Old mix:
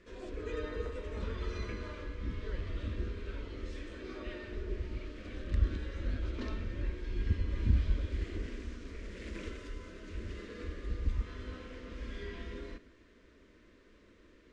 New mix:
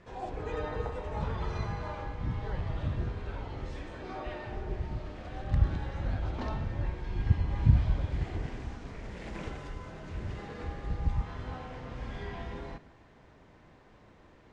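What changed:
second sound: muted; master: remove fixed phaser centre 330 Hz, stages 4

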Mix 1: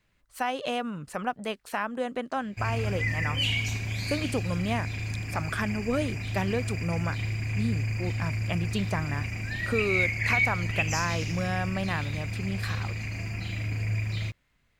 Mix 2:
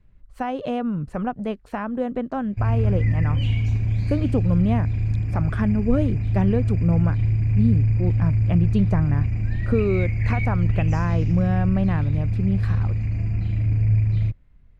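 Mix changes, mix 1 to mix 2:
background -4.0 dB; master: add tilt -4.5 dB/oct

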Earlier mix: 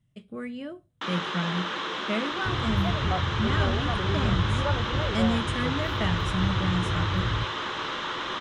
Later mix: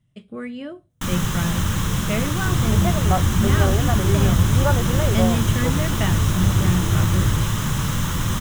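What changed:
speech +4.0 dB; first sound: remove Chebyshev band-pass 350–4000 Hz, order 3; second sound +8.0 dB

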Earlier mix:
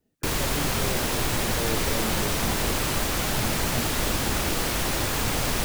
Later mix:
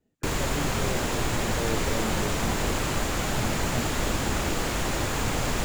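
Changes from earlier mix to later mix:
background: add high shelf 4500 Hz -10.5 dB; master: add bell 7100 Hz +8.5 dB 0.29 oct

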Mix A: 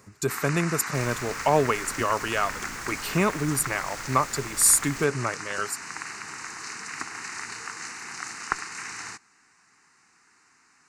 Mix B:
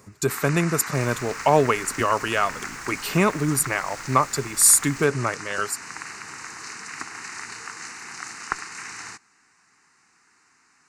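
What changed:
speech +3.5 dB; second sound -4.0 dB

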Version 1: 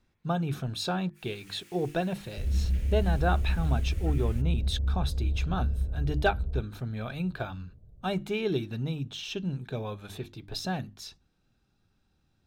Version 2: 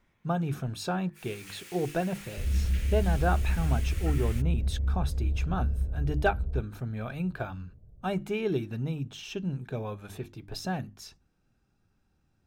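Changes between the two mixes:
speech: add bell 3800 Hz -8.5 dB 0.64 oct; first sound +8.5 dB

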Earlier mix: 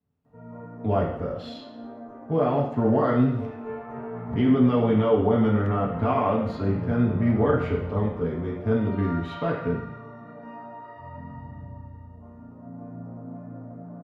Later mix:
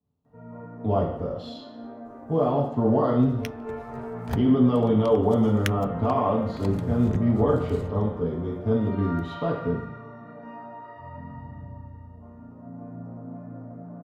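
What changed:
speech: add band shelf 1900 Hz -9.5 dB 1.1 oct; second sound: remove band-pass 180 Hz, Q 1.4

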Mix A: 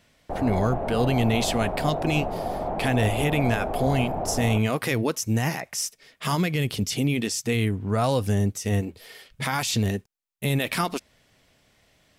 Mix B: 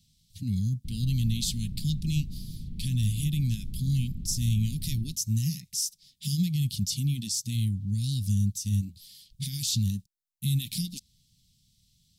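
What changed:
background: entry +0.55 s; master: add elliptic band-stop 180–3900 Hz, stop band 60 dB

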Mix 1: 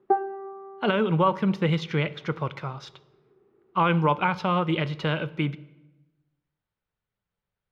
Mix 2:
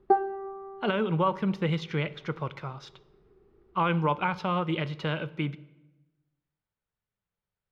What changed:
speech -4.0 dB; background: remove BPF 200–3000 Hz

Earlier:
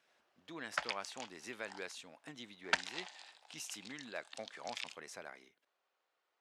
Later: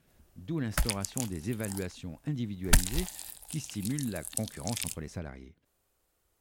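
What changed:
background: remove Gaussian blur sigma 2 samples; master: remove HPF 720 Hz 12 dB/oct

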